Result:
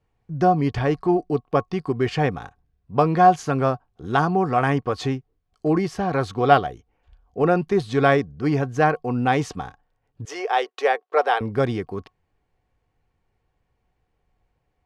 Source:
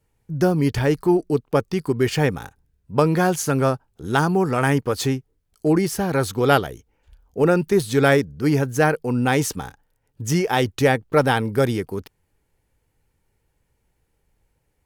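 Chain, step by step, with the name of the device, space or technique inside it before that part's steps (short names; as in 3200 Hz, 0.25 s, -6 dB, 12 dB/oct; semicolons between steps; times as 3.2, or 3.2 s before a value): 10.25–11.41 Chebyshev high-pass 410 Hz, order 4; inside a cardboard box (LPF 4200 Hz 12 dB/oct; small resonant body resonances 730/1100 Hz, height 15 dB, ringing for 95 ms); gain -2.5 dB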